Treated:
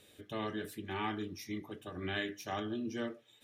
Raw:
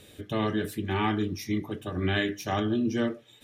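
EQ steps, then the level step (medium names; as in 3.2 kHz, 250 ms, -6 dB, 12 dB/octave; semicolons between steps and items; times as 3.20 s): bass shelf 230 Hz -8 dB; -8.0 dB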